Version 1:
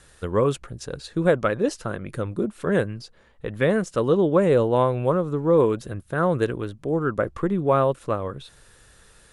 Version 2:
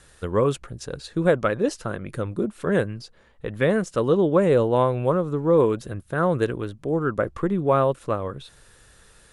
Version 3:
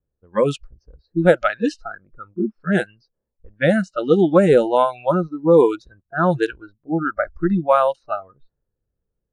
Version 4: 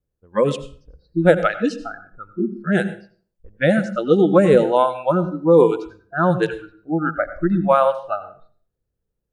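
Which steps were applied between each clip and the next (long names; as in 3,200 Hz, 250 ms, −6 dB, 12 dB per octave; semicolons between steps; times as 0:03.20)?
no processing that can be heard
low-pass that shuts in the quiet parts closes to 420 Hz, open at −14.5 dBFS; noise reduction from a noise print of the clip's start 28 dB; level +6 dB
convolution reverb RT60 0.45 s, pre-delay 80 ms, DRR 12 dB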